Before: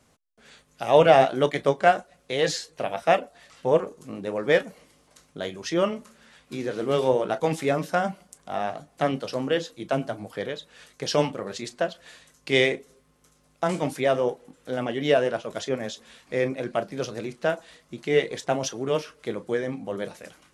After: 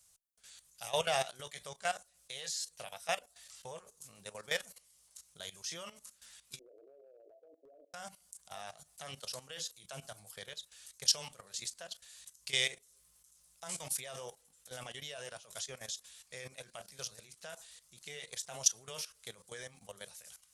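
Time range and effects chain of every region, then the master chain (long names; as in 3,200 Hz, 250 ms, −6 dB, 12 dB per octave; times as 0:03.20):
0:06.59–0:07.94: Chebyshev band-pass filter 280–680 Hz, order 5 + downward compressor 16 to 1, threshold −29 dBFS
whole clip: guitar amp tone stack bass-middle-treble 10-0-10; output level in coarse steps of 15 dB; drawn EQ curve 430 Hz 0 dB, 2,100 Hz −5 dB, 8,800 Hz +11 dB; level +1 dB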